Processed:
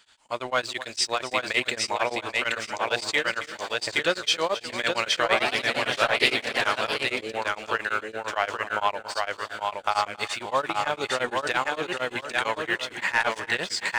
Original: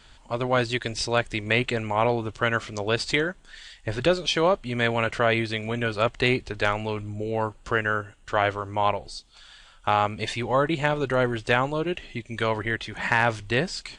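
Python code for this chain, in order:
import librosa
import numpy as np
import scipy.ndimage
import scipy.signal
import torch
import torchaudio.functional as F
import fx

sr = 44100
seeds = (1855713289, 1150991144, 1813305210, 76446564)

y = fx.recorder_agc(x, sr, target_db=-16.5, rise_db_per_s=6.3, max_gain_db=30)
y = fx.highpass(y, sr, hz=1000.0, slope=6)
y = fx.high_shelf(y, sr, hz=8300.0, db=5.5)
y = fx.leveller(y, sr, passes=1)
y = fx.echo_feedback(y, sr, ms=823, feedback_pct=33, wet_db=-3)
y = fx.echo_pitch(y, sr, ms=108, semitones=2, count=2, db_per_echo=-3.0, at=(5.2, 7.31))
y = y + 10.0 ** (-14.5 / 20.0) * np.pad(y, (int(274 * sr / 1000.0), 0))[:len(y)]
y = y * np.abs(np.cos(np.pi * 8.8 * np.arange(len(y)) / sr))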